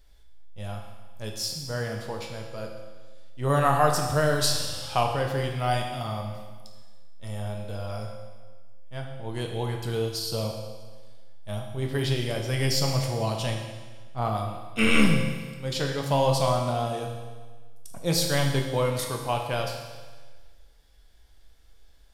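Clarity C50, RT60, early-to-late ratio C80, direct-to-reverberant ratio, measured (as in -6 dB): 4.0 dB, 1.4 s, 6.0 dB, 1.0 dB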